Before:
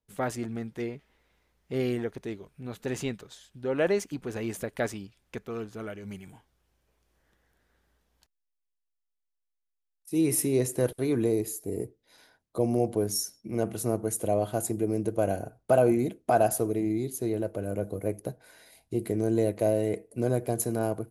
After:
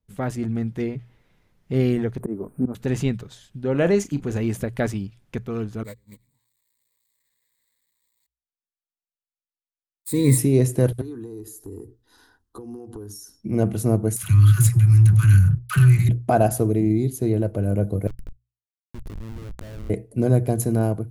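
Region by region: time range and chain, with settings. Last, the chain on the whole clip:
2.20–2.75 s: FFT filter 150 Hz 0 dB, 240 Hz +15 dB, 1.2 kHz +10 dB, 2.6 kHz -12 dB, 5.4 kHz -27 dB, 8.8 kHz +13 dB + slow attack 259 ms
3.71–4.38 s: peaking EQ 6.9 kHz +8 dB 0.25 oct + doubling 35 ms -12 dB
5.83–10.38 s: zero-crossing glitches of -31 dBFS + gate -36 dBFS, range -36 dB + rippled EQ curve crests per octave 1, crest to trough 16 dB
11.01–13.41 s: peaking EQ 2 kHz +8 dB 1.1 oct + compression, threshold -38 dBFS + static phaser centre 600 Hz, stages 6
14.16–16.09 s: Chebyshev band-stop 170–1200 Hz, order 5 + waveshaping leveller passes 3 + phase dispersion lows, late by 68 ms, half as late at 490 Hz
18.07–19.90 s: tone controls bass -5 dB, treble +12 dB + Schmitt trigger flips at -24.5 dBFS + level held to a coarse grid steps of 23 dB
whole clip: tone controls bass +12 dB, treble -2 dB; hum notches 60/120 Hz; level rider gain up to 3.5 dB

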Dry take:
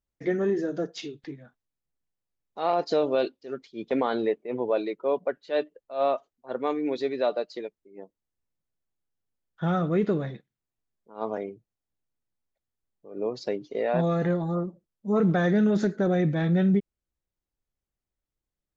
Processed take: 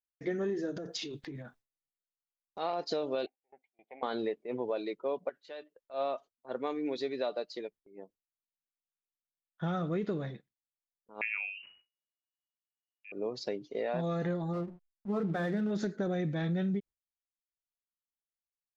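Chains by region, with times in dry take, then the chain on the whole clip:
0.76–2.59 s: transient shaper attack +4 dB, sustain +11 dB + compression, threshold -32 dBFS
3.26–4.03 s: partial rectifier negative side -7 dB + two resonant band-passes 1.3 kHz, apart 1.5 oct + distance through air 490 m
5.29–5.94 s: bass shelf 450 Hz -10 dB + compression, threshold -35 dBFS
11.21–13.12 s: frequency inversion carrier 2.9 kHz + decay stretcher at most 84 dB/s
14.53–15.71 s: low-pass 3.3 kHz + hum notches 60/120/180/240/300/360/420/480/540 Hz + hysteresis with a dead band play -42 dBFS
whole clip: gate with hold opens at -46 dBFS; dynamic bell 4.6 kHz, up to +5 dB, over -50 dBFS, Q 0.95; compression, threshold -24 dBFS; trim -5 dB

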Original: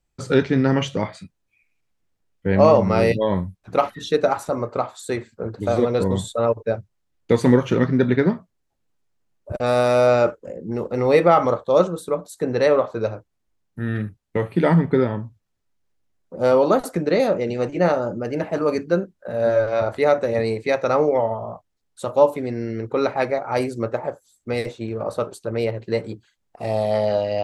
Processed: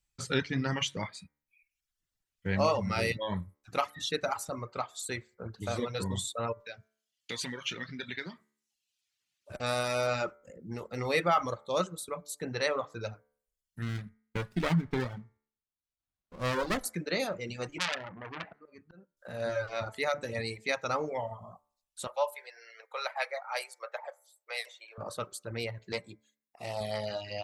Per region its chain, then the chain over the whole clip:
6.60–9.54 s: frequency weighting D + compression 2:1, threshold -32 dBFS
13.82–16.81 s: low-pass 9.6 kHz + sliding maximum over 17 samples
17.78–19.17 s: low-pass 2.5 kHz + slow attack 627 ms + transformer saturation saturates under 3.1 kHz
22.07–24.98 s: steep high-pass 520 Hz 48 dB/octave + peaking EQ 6.8 kHz -6.5 dB 0.53 oct
25.92–26.81 s: comb of notches 1.5 kHz + loudspeaker Doppler distortion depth 0.12 ms
whole clip: de-hum 73.11 Hz, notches 32; reverb removal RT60 0.8 s; amplifier tone stack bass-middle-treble 5-5-5; trim +6 dB

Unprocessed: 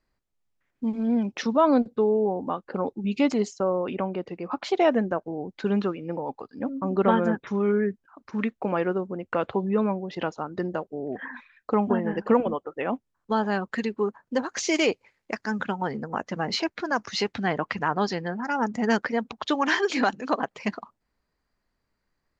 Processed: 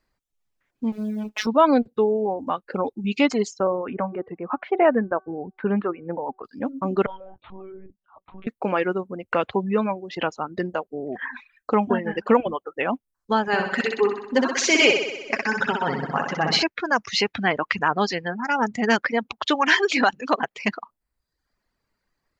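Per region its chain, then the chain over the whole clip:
0.92–1.47 s: companding laws mixed up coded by mu + compression 4:1, threshold -25 dBFS + robot voice 213 Hz
3.67–6.44 s: low-pass 1.9 kHz 24 dB/octave + de-hum 378.6 Hz, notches 4
7.06–8.47 s: compression 2.5:1, threshold -36 dBFS + static phaser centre 740 Hz, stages 4 + monotone LPC vocoder at 8 kHz 190 Hz
13.47–16.63 s: comb 7.3 ms, depth 39% + flutter echo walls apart 10.8 m, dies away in 1.3 s
whole clip: dynamic bell 2.5 kHz, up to +5 dB, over -45 dBFS, Q 1.3; reverb removal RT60 0.73 s; bass shelf 470 Hz -3 dB; trim +4.5 dB

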